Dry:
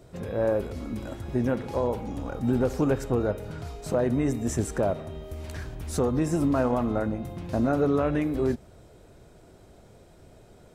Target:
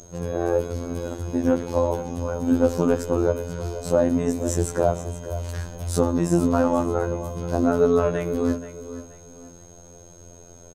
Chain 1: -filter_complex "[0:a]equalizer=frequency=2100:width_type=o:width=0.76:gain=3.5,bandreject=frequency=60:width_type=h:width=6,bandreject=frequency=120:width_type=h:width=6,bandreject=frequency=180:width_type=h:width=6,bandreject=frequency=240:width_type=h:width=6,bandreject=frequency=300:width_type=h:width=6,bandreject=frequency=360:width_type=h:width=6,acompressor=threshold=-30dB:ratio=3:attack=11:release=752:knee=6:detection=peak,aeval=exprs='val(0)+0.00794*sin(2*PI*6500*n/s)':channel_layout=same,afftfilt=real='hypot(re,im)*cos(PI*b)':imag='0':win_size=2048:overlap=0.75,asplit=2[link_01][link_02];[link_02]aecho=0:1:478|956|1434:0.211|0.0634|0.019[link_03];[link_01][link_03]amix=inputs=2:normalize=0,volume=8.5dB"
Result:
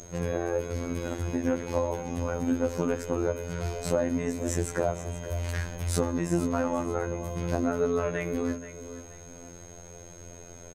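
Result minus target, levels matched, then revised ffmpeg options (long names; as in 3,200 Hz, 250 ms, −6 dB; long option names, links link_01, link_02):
downward compressor: peak gain reduction +9.5 dB; 2,000 Hz band +6.0 dB
-filter_complex "[0:a]equalizer=frequency=2100:width_type=o:width=0.76:gain=-7,bandreject=frequency=60:width_type=h:width=6,bandreject=frequency=120:width_type=h:width=6,bandreject=frequency=180:width_type=h:width=6,bandreject=frequency=240:width_type=h:width=6,bandreject=frequency=300:width_type=h:width=6,bandreject=frequency=360:width_type=h:width=6,aeval=exprs='val(0)+0.00794*sin(2*PI*6500*n/s)':channel_layout=same,afftfilt=real='hypot(re,im)*cos(PI*b)':imag='0':win_size=2048:overlap=0.75,asplit=2[link_01][link_02];[link_02]aecho=0:1:478|956|1434:0.211|0.0634|0.019[link_03];[link_01][link_03]amix=inputs=2:normalize=0,volume=8.5dB"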